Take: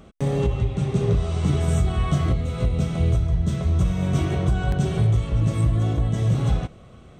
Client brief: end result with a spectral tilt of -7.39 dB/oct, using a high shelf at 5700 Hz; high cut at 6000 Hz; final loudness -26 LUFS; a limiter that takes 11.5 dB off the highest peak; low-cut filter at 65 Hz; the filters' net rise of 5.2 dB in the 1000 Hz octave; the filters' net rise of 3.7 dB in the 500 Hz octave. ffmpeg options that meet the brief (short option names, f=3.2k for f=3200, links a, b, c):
-af "highpass=65,lowpass=6k,equalizer=f=500:t=o:g=3.5,equalizer=f=1k:t=o:g=6,highshelf=f=5.7k:g=-6,volume=2dB,alimiter=limit=-17.5dB:level=0:latency=1"